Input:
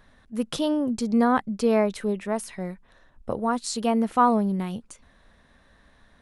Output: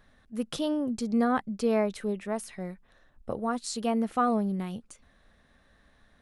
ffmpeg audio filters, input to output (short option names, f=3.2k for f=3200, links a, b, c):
-af "bandreject=f=970:w=11,volume=-4.5dB"